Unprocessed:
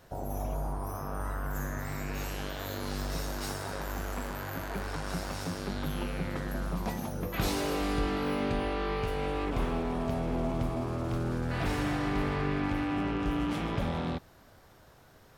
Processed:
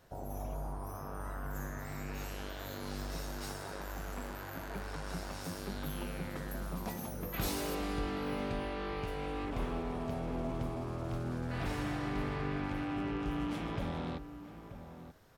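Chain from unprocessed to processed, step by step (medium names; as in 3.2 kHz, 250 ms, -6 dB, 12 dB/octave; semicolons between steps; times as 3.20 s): 5.44–7.75 s: treble shelf 10 kHz +12 dB; echo from a far wall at 160 m, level -11 dB; trim -6 dB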